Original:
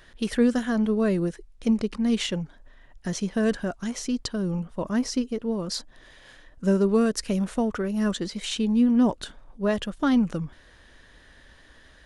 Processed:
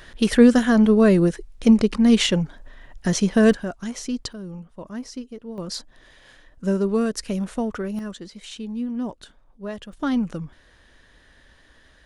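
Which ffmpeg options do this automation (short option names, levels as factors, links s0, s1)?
-af "asetnsamples=n=441:p=0,asendcmd='3.53 volume volume 0dB;4.33 volume volume -8dB;5.58 volume volume -0.5dB;7.99 volume volume -8dB;9.93 volume volume -1.5dB',volume=2.51"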